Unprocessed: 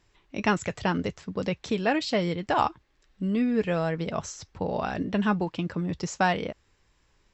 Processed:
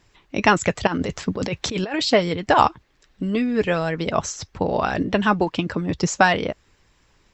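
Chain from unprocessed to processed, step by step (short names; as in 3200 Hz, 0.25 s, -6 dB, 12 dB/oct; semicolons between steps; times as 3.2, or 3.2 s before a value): harmonic-percussive split percussive +8 dB; 0.87–2.02 negative-ratio compressor -27 dBFS, ratio -1; gain +2.5 dB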